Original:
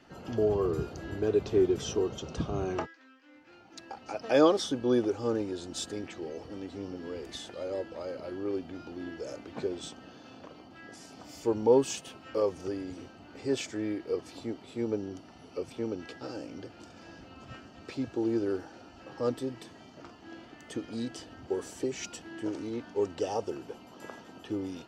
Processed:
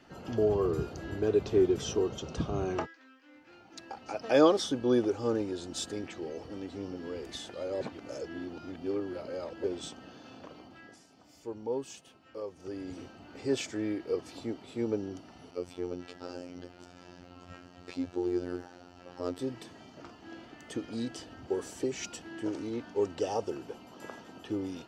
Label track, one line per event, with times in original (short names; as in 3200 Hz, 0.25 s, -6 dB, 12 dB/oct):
7.810000	9.640000	reverse
10.660000	12.950000	dip -11.5 dB, fades 0.39 s linear
15.510000	19.390000	robotiser 89 Hz